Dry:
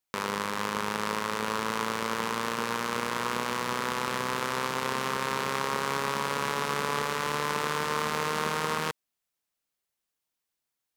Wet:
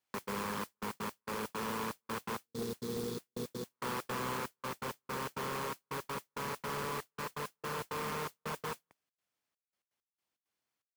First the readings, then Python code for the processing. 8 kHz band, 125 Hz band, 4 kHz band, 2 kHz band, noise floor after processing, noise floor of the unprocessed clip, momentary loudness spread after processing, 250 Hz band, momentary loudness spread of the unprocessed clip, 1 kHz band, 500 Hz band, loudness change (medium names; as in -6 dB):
-9.5 dB, -6.0 dB, -12.0 dB, -12.0 dB, under -85 dBFS, -85 dBFS, 5 LU, -6.5 dB, 2 LU, -11.0 dB, -8.0 dB, -10.0 dB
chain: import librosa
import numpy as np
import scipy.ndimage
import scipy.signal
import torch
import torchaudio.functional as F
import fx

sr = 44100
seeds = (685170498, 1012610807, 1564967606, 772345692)

y = 10.0 ** (-28.0 / 20.0) * np.tanh(x / 10.0 ** (-28.0 / 20.0))
y = fx.spec_box(y, sr, start_s=2.38, length_s=1.33, low_hz=500.0, high_hz=3300.0, gain_db=-21)
y = fx.step_gate(y, sr, bpm=165, pattern='xx.xxxx..x.x..', floor_db=-60.0, edge_ms=4.5)
y = fx.high_shelf(y, sr, hz=6100.0, db=-11.5)
y = fx.mod_noise(y, sr, seeds[0], snr_db=13)
y = scipy.signal.sosfilt(scipy.signal.butter(2, 86.0, 'highpass', fs=sr, output='sos'), y)
y = np.clip(y, -10.0 ** (-36.0 / 20.0), 10.0 ** (-36.0 / 20.0))
y = fx.notch(y, sr, hz=3800.0, q=27.0)
y = fx.rider(y, sr, range_db=10, speed_s=2.0)
y = F.gain(torch.from_numpy(y), 1.5).numpy()